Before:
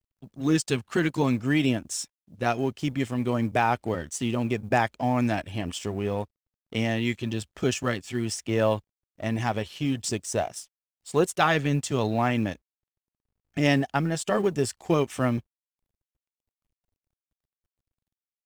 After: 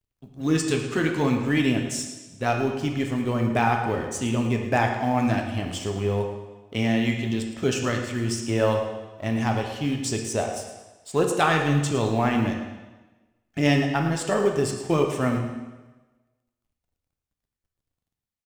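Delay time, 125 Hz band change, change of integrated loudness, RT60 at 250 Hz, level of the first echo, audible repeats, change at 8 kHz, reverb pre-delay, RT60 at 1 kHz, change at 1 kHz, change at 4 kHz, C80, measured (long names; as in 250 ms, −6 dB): 111 ms, +3.0 dB, +2.0 dB, 1.2 s, −12.5 dB, 1, +1.5 dB, 5 ms, 1.2 s, +2.0 dB, +1.5 dB, 6.5 dB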